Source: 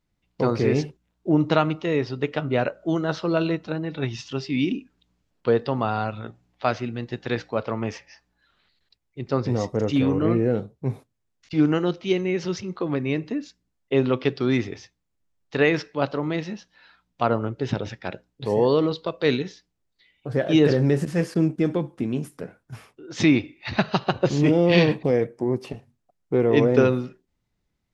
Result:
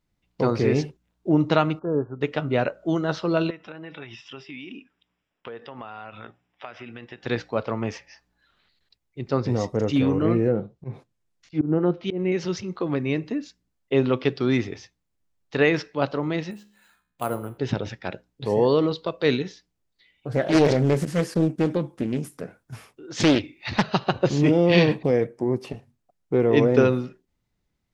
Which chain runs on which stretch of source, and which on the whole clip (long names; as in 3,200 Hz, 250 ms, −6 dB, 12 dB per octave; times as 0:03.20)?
0:01.79–0:02.21: linear-phase brick-wall low-pass 1,700 Hz + expander for the loud parts, over −31 dBFS
0:03.50–0:07.23: spectral tilt +3.5 dB per octave + downward compressor 10 to 1, threshold −33 dBFS + Savitzky-Golay smoothing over 25 samples
0:10.47–0:12.32: treble cut that deepens with the level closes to 600 Hz, closed at −15.5 dBFS + comb filter 5.8 ms, depth 30% + volume swells 113 ms
0:16.51–0:17.58: tuned comb filter 69 Hz, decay 0.55 s + bad sample-rate conversion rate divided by 4×, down filtered, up hold
0:20.32–0:23.88: high-shelf EQ 5,800 Hz +6 dB + highs frequency-modulated by the lows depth 0.58 ms
whole clip: no processing